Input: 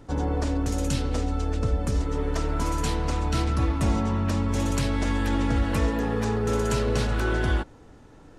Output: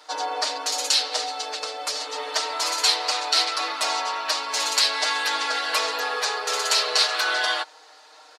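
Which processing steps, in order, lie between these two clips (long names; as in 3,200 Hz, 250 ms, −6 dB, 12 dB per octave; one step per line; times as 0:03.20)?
high-pass filter 670 Hz 24 dB per octave
parametric band 4,400 Hz +13.5 dB 0.61 octaves
comb filter 6.5 ms, depth 98%
level +5.5 dB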